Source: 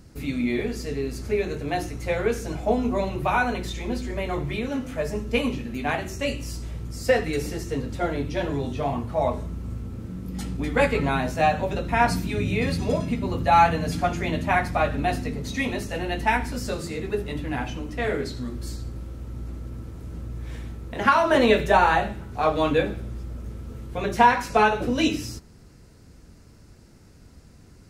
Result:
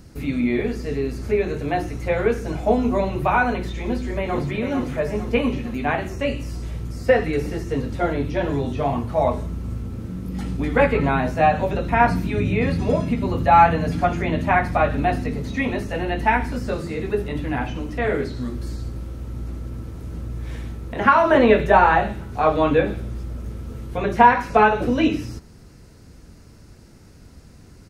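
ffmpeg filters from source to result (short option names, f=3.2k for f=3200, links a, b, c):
-filter_complex "[0:a]asplit=2[a][b];[b]afade=t=in:st=3.78:d=0.01,afade=t=out:st=4.51:d=0.01,aecho=0:1:450|900|1350|1800|2250|2700:0.473151|0.236576|0.118288|0.0591439|0.029572|0.014786[c];[a][c]amix=inputs=2:normalize=0,acrossover=split=2700[d][e];[e]acompressor=threshold=-50dB:ratio=4:attack=1:release=60[f];[d][f]amix=inputs=2:normalize=0,bandreject=f=7.5k:w=27,volume=4dB"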